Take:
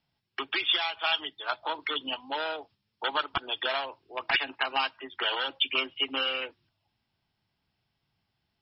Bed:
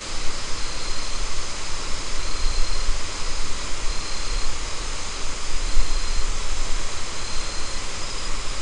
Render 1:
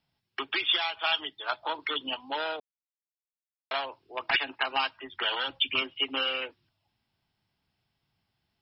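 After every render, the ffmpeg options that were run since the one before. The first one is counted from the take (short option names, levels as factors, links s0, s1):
-filter_complex "[0:a]asettb=1/sr,asplit=3[s0][s1][s2];[s0]atrim=end=4.684[s3];[s1]atrim=start=4.68:end=5.82,asetpts=PTS-STARTPTS,afade=t=in:d=0.004:c=qsin,afade=t=out:st=1.136:d=0.004:c=qsin,asubboost=boost=12:cutoff=180[s4];[s2]atrim=start=5.816[s5];[s3][s4]acrossfade=d=0.004:c1=hsin:c2=qsin[s6];[s6][s5]acrossfade=d=0.004:c1=qsin:c2=hsin,asplit=3[s7][s8][s9];[s7]atrim=end=2.6,asetpts=PTS-STARTPTS,afade=t=out:st=2.596:d=0.004:c=hsin[s10];[s8]atrim=start=2.6:end=3.71,asetpts=PTS-STARTPTS,volume=0[s11];[s9]atrim=start=3.71,asetpts=PTS-STARTPTS,afade=t=in:d=0.004:c=hsin[s12];[s10][s11][s12]concat=n=3:v=0:a=1"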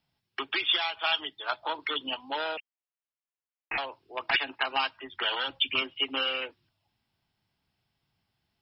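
-filter_complex "[0:a]asettb=1/sr,asplit=3[s0][s1][s2];[s0]atrim=end=2.574[s3];[s1]atrim=start=2.57:end=3.78,asetpts=PTS-STARTPTS,afade=t=in:d=0.004:c=qsin,afade=t=out:st=1.206:d=0.004:c=qsin,lowpass=f=2700:t=q:w=0.5098,lowpass=f=2700:t=q:w=0.6013,lowpass=f=2700:t=q:w=0.9,lowpass=f=2700:t=q:w=2.563,afreqshift=-3200[s4];[s2]atrim=start=3.776[s5];[s3][s4]acrossfade=d=0.004:c1=hsin:c2=qsin[s6];[s6][s5]acrossfade=d=0.004:c1=qsin:c2=hsin"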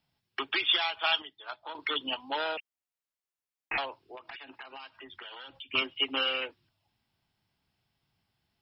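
-filter_complex "[0:a]asettb=1/sr,asplit=3[s0][s1][s2];[s0]atrim=end=4.154[s3];[s1]atrim=start=4.15:end=5.74,asetpts=PTS-STARTPTS,afade=t=in:d=0.004:c=qsin,afade=t=out:st=1.586:d=0.004:c=qsin,acompressor=threshold=0.00708:ratio=6:attack=3.2:release=140:knee=1:detection=peak[s4];[s2]atrim=start=5.736[s5];[s3][s4]acrossfade=d=0.004:c1=hsin:c2=qsin[s6];[s6][s5]acrossfade=d=0.004:c1=qsin:c2=hsin,asplit=3[s7][s8][s9];[s7]atrim=end=1.222[s10];[s8]atrim=start=1.218:end=1.752,asetpts=PTS-STARTPTS,volume=0.335[s11];[s9]atrim=start=1.748[s12];[s10][s11]acrossfade=d=0.004:c1=hsin:c2=hsin[s13];[s13][s12]acrossfade=d=0.004:c1=hsin:c2=hsin"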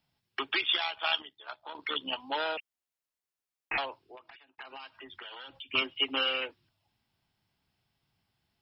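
-filter_complex "[0:a]asettb=1/sr,asplit=3[s0][s1][s2];[s0]atrim=end=0.614[s3];[s1]atrim=start=0.61:end=2.13,asetpts=PTS-STARTPTS,afade=t=in:d=0.004:c=qsin,afade=t=out:st=1.516:d=0.004:c=qsin,tremolo=f=71:d=0.519[s4];[s2]atrim=start=2.126[s5];[s3][s4]acrossfade=d=0.004:c1=hsin:c2=qsin[s6];[s6][s5]acrossfade=d=0.004:c1=qsin:c2=hsin,asplit=2[s7][s8];[s7]atrim=end=4.58,asetpts=PTS-STARTPTS,afade=t=out:st=3.9:d=0.68[s9];[s8]atrim=start=4.58,asetpts=PTS-STARTPTS,afade=t=in:d=0.004:c=hsin[s10];[s9][s10]concat=n=2:v=0:a=1"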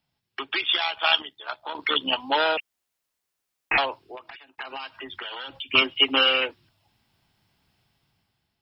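-af "dynaudnorm=f=230:g=7:m=3.16"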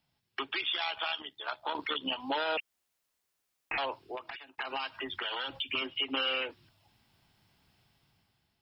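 -af "acompressor=threshold=0.0447:ratio=3,alimiter=limit=0.075:level=0:latency=1:release=72"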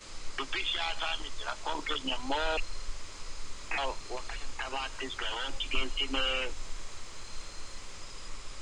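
-filter_complex "[1:a]volume=0.158[s0];[0:a][s0]amix=inputs=2:normalize=0"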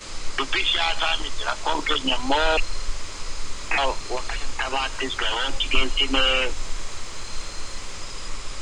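-af "volume=3.35"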